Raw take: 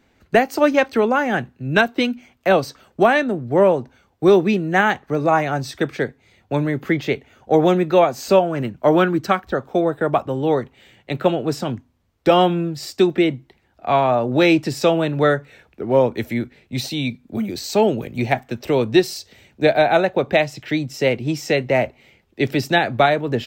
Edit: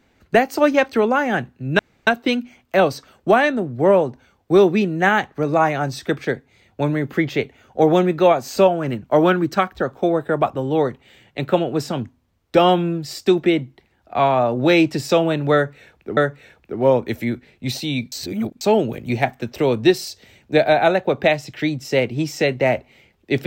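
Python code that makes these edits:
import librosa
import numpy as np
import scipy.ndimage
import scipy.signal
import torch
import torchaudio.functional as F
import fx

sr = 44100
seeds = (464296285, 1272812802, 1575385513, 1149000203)

y = fx.edit(x, sr, fx.insert_room_tone(at_s=1.79, length_s=0.28),
    fx.repeat(start_s=15.26, length_s=0.63, count=2),
    fx.reverse_span(start_s=17.21, length_s=0.49), tone=tone)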